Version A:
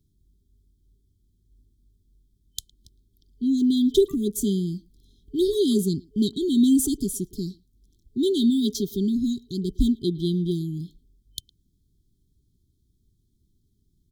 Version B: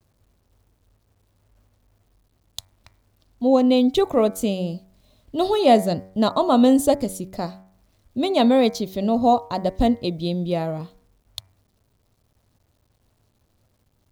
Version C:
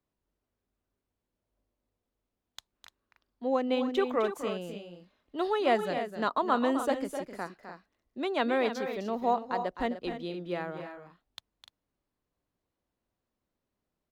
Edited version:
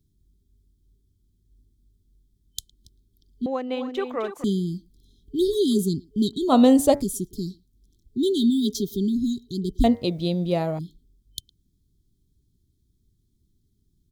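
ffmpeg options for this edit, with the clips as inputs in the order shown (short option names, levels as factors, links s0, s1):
-filter_complex "[1:a]asplit=2[s0][s1];[0:a]asplit=4[s2][s3][s4][s5];[s2]atrim=end=3.462[s6];[2:a]atrim=start=3.458:end=4.442[s7];[s3]atrim=start=4.438:end=6.53[s8];[s0]atrim=start=6.47:end=7.04[s9];[s4]atrim=start=6.98:end=9.842[s10];[s1]atrim=start=9.838:end=10.792[s11];[s5]atrim=start=10.788[s12];[s6][s7]acrossfade=d=0.004:c1=hsin:c2=hsin[s13];[s13][s8]acrossfade=d=0.004:c1=hsin:c2=hsin[s14];[s14][s9]acrossfade=d=0.06:c1=tri:c2=tri[s15];[s15][s10]acrossfade=d=0.06:c1=tri:c2=tri[s16];[s16][s11]acrossfade=d=0.004:c1=hsin:c2=hsin[s17];[s17][s12]acrossfade=d=0.004:c1=hsin:c2=hsin"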